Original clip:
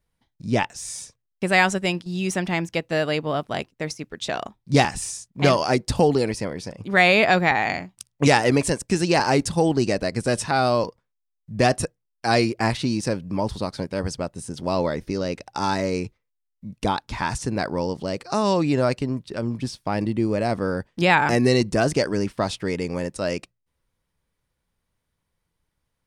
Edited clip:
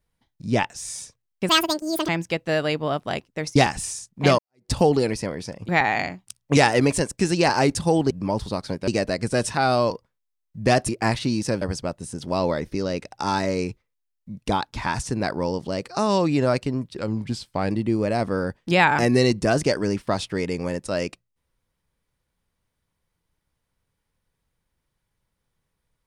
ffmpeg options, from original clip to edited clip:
-filter_complex "[0:a]asplit=12[s0][s1][s2][s3][s4][s5][s6][s7][s8][s9][s10][s11];[s0]atrim=end=1.494[s12];[s1]atrim=start=1.49:end=2.52,asetpts=PTS-STARTPTS,asetrate=76293,aresample=44100,atrim=end_sample=26256,asetpts=PTS-STARTPTS[s13];[s2]atrim=start=2.516:end=3.992[s14];[s3]atrim=start=4.738:end=5.57,asetpts=PTS-STARTPTS,afade=t=out:st=0.828:d=0.004:c=hsin[s15];[s4]atrim=start=5.57:end=6.872,asetpts=PTS-STARTPTS,afade=t=in:d=0.32:c=exp[s16];[s5]atrim=start=7.388:end=9.812[s17];[s6]atrim=start=13.198:end=13.972[s18];[s7]atrim=start=9.808:end=11.822[s19];[s8]atrim=start=12.468:end=13.202[s20];[s9]atrim=start=13.968:end=19.324[s21];[s10]atrim=start=19.32:end=20,asetpts=PTS-STARTPTS,asetrate=41013,aresample=44100,atrim=end_sample=32245,asetpts=PTS-STARTPTS[s22];[s11]atrim=start=19.996[s23];[s12][s13]acrossfade=d=0.004:c1=hsin:c2=hsin[s24];[s24][s14]acrossfade=d=0.004:c1=hsin:c2=hsin[s25];[s15][s16]concat=n=2:v=0:a=1[s26];[s25][s26]acrossfade=d=0.004:c1=hsin:c2=hsin[s27];[s27][s17]acrossfade=d=0.004:c1=hsin:c2=hsin[s28];[s28][s18]acrossfade=d=0.004:c1=hsin:c2=hsin[s29];[s29][s19]acrossfade=d=0.004:c1=hsin:c2=hsin[s30];[s30][s20]acrossfade=d=0.004:c1=hsin:c2=hsin[s31];[s31][s21]acrossfade=d=0.004:c1=hsin:c2=hsin[s32];[s32][s22]acrossfade=d=0.004:c1=hsin:c2=hsin[s33];[s33][s23]acrossfade=d=0.004:c1=hsin:c2=hsin"

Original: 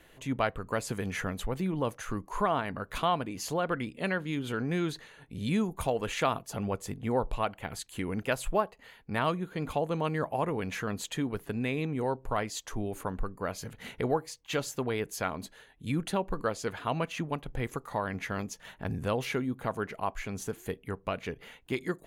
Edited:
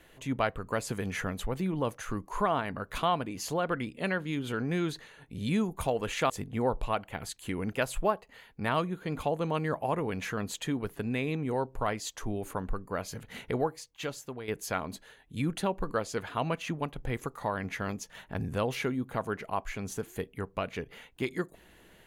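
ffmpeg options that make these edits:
-filter_complex "[0:a]asplit=3[s0][s1][s2];[s0]atrim=end=6.302[s3];[s1]atrim=start=6.798:end=14.98,asetpts=PTS-STARTPTS,afade=t=out:st=7.172:d=1.01:silence=0.281838[s4];[s2]atrim=start=14.98,asetpts=PTS-STARTPTS,afade=t=in:d=0.004:c=hsin:silence=0.281838[s5];[s4][s5]concat=n=2:v=0:a=1[s6];[s3][s6]acrossfade=d=0.004:c1=hsin:c2=hsin"

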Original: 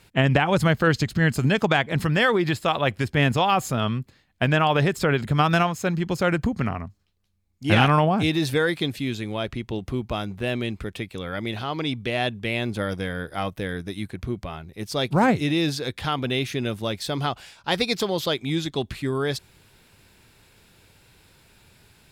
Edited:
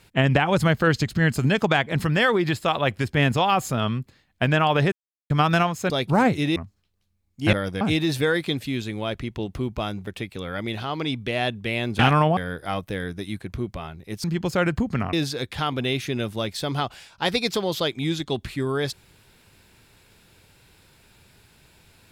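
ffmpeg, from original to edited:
-filter_complex "[0:a]asplit=12[s0][s1][s2][s3][s4][s5][s6][s7][s8][s9][s10][s11];[s0]atrim=end=4.92,asetpts=PTS-STARTPTS,afade=t=out:st=4.916:d=0.004:c=hsin[s12];[s1]atrim=start=4.92:end=5.3,asetpts=PTS-STARTPTS,volume=0[s13];[s2]atrim=start=5.3:end=5.902,asetpts=PTS-STARTPTS,afade=t=in:d=0.004:c=hsin[s14];[s3]atrim=start=14.928:end=15.592[s15];[s4]atrim=start=6.788:end=7.762[s16];[s5]atrim=start=12.778:end=13.062[s17];[s6]atrim=start=8.138:end=10.402[s18];[s7]atrim=start=10.858:end=12.782[s19];[s8]atrim=start=7.758:end=8.142[s20];[s9]atrim=start=13.058:end=14.932[s21];[s10]atrim=start=5.898:end=6.792[s22];[s11]atrim=start=15.588[s23];[s12][s13][s14]concat=n=3:v=0:a=1[s24];[s24][s15]acrossfade=d=0.004:c1=hsin:c2=hsin[s25];[s25][s16]acrossfade=d=0.004:c1=hsin:c2=hsin[s26];[s26][s17]acrossfade=d=0.004:c1=hsin:c2=hsin[s27];[s27][s18]acrossfade=d=0.004:c1=hsin:c2=hsin[s28];[s28][s19]acrossfade=d=0.004:c1=hsin:c2=hsin[s29];[s29][s20]acrossfade=d=0.004:c1=hsin:c2=hsin[s30];[s30][s21]acrossfade=d=0.004:c1=hsin:c2=hsin[s31];[s31][s22]acrossfade=d=0.004:c1=hsin:c2=hsin[s32];[s32][s23]acrossfade=d=0.004:c1=hsin:c2=hsin"

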